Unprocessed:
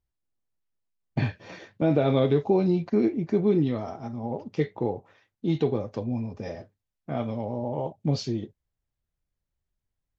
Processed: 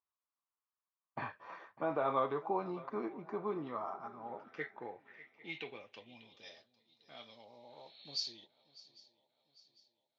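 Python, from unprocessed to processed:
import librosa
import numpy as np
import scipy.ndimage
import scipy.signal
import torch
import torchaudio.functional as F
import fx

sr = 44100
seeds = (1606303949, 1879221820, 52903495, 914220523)

y = fx.spec_repair(x, sr, seeds[0], start_s=7.54, length_s=0.68, low_hz=1600.0, high_hz=4400.0, source='both')
y = fx.echo_swing(y, sr, ms=800, ratio=3, feedback_pct=44, wet_db=-20.0)
y = fx.filter_sweep_bandpass(y, sr, from_hz=1100.0, to_hz=4100.0, start_s=3.87, end_s=6.79, q=5.3)
y = y * 10.0 ** (7.0 / 20.0)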